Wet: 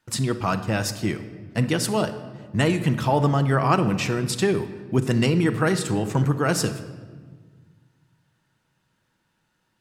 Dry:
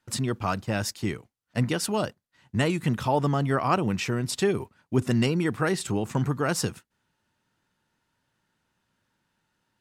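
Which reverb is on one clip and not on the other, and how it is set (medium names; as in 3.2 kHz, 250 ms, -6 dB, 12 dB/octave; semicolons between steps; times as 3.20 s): simulated room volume 1600 m³, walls mixed, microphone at 0.66 m; trim +3 dB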